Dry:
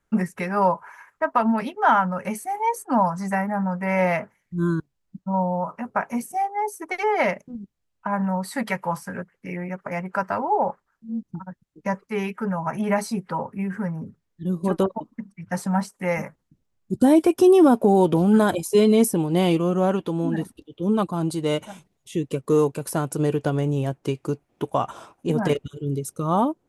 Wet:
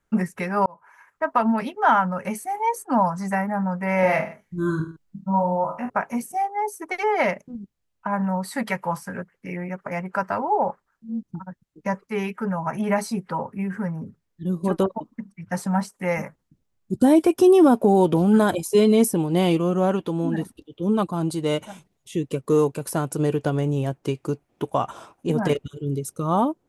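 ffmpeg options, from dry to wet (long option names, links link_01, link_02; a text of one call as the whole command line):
ffmpeg -i in.wav -filter_complex "[0:a]asettb=1/sr,asplit=3[link_01][link_02][link_03];[link_01]atrim=end=4.014[link_04];[link_02]atrim=start=4.01:end=5.9,asetpts=PTS-STARTPTS,afade=type=in:duration=0.004:curve=qsin,afade=type=out:start_time=1.886:duration=0.004:curve=qsin,aecho=1:1:20|45|76.25|115.3|164.1:0.631|0.398|0.251|0.158|0.1,atrim=end_sample=83349[link_05];[link_03]atrim=start=5.896[link_06];[link_04][link_05]acrossfade=duration=0.004:curve1=hsin:curve2=qsin[link_07];[link_07][link_06]acrossfade=duration=0.004:curve1=qsin:curve2=hsin,asplit=2[link_08][link_09];[link_08]atrim=end=0.66,asetpts=PTS-STARTPTS,afade=type=out:start_time=0.656:duration=0.004:curve=hsin[link_10];[link_09]atrim=start=0.66,asetpts=PTS-STARTPTS,afade=type=in:duration=0.65[link_11];[link_10][link_11]concat=n=2:v=0:a=1" out.wav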